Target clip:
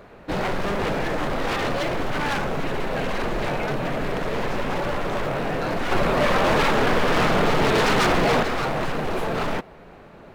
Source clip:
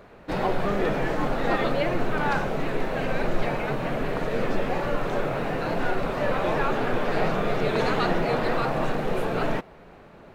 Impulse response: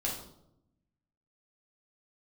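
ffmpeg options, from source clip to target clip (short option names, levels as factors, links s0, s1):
-filter_complex "[0:a]aeval=exprs='0.0794*(abs(mod(val(0)/0.0794+3,4)-2)-1)':c=same,asettb=1/sr,asplit=3[s0][s1][s2];[s0]atrim=end=5.914[s3];[s1]atrim=start=5.91:end=8.43,asetpts=PTS-STARTPTS,afade=t=in:d=0.004:c=qsin,afade=t=out:st=2.516:d=0.004:c=qsin,acontrast=34[s4];[s2]atrim=start=8.426[s5];[s3][s4]acrossfade=d=0.004:c1=hsin:c2=qsin[s6];[s6][s5]acrossfade=d=0.004:c1=qsin:c2=hsin,volume=1.41"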